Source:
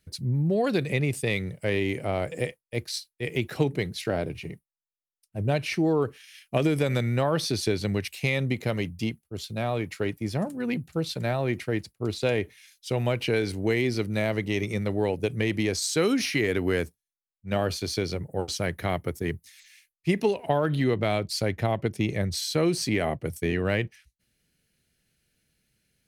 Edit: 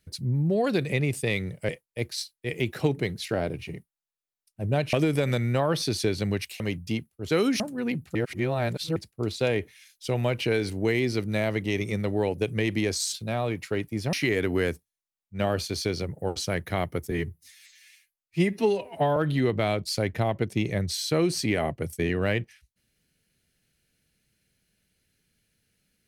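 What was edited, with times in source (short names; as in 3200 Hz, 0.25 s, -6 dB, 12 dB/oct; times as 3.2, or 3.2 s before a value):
1.69–2.45 cut
5.69–6.56 cut
8.23–8.72 cut
9.42–10.42 swap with 15.95–16.25
10.97–11.78 reverse
19.23–20.6 stretch 1.5×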